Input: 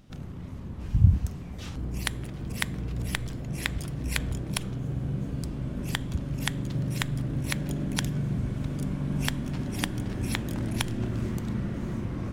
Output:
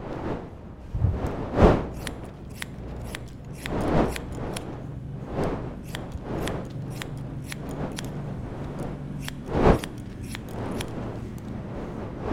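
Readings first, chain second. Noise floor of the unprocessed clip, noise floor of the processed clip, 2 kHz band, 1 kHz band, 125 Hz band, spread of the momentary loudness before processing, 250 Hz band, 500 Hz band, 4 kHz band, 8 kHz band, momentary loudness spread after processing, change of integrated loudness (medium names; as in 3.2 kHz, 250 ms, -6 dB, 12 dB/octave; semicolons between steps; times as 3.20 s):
-38 dBFS, -40 dBFS, -2.0 dB, +10.5 dB, -2.0 dB, 6 LU, +2.0 dB, +12.5 dB, -4.5 dB, -5.5 dB, 15 LU, +1.0 dB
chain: wind noise 510 Hz -24 dBFS; trim -5.5 dB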